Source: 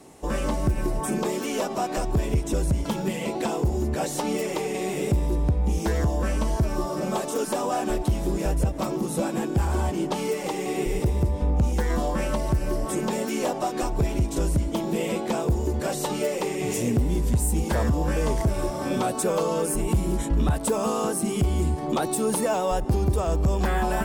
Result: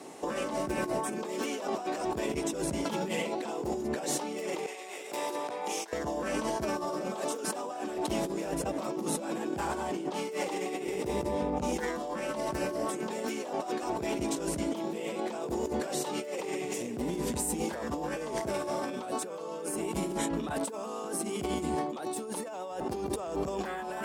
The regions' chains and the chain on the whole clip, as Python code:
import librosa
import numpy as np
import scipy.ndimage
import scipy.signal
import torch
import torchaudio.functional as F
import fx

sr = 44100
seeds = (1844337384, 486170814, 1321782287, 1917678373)

y = fx.chain(x, sr, fx.highpass(hz=700.0, slope=12),
    fx.over_compress(threshold_db=-40.0, ratio=-0.5), at=(4.66, 5.93))
y = scipy.signal.sosfilt(scipy.signal.butter(2, 260.0, 'highpass', fs=sr, output='sos'), y)
y = fx.high_shelf(y, sr, hz=11000.0, db=-10.5)
y = fx.over_compress(y, sr, threshold_db=-34.0, ratio=-1.0)